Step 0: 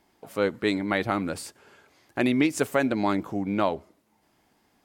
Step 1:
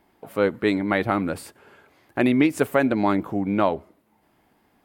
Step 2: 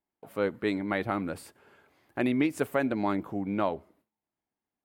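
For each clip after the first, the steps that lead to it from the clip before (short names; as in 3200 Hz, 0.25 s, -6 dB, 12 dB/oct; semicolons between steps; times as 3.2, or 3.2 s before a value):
bell 6100 Hz -10.5 dB 1.4 oct; gain +4 dB
gate with hold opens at -50 dBFS; gain -7.5 dB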